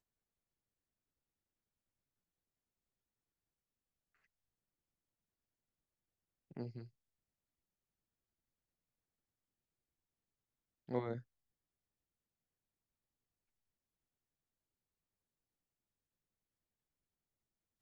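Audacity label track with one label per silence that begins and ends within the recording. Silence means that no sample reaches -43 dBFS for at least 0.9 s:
6.820000	10.890000	silence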